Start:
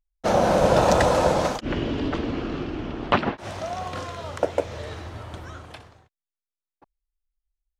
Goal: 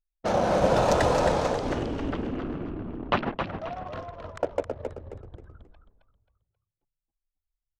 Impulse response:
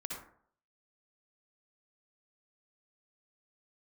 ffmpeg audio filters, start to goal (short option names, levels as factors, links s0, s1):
-filter_complex "[0:a]anlmdn=39.8,asplit=2[s0][s1];[s1]asplit=4[s2][s3][s4][s5];[s2]adelay=267,afreqshift=-46,volume=0.501[s6];[s3]adelay=534,afreqshift=-92,volume=0.18[s7];[s4]adelay=801,afreqshift=-138,volume=0.0653[s8];[s5]adelay=1068,afreqshift=-184,volume=0.0234[s9];[s6][s7][s8][s9]amix=inputs=4:normalize=0[s10];[s0][s10]amix=inputs=2:normalize=0,volume=0.596"